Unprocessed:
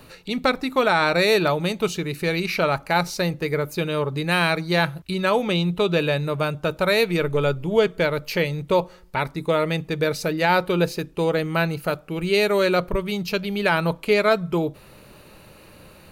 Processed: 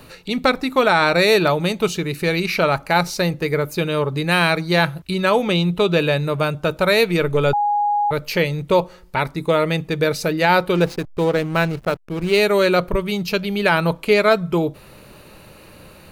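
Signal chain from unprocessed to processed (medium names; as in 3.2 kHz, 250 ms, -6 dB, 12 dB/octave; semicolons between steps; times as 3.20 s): 7.53–8.11 s: bleep 826 Hz -19 dBFS; 10.75–12.40 s: hysteresis with a dead band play -28 dBFS; trim +3.5 dB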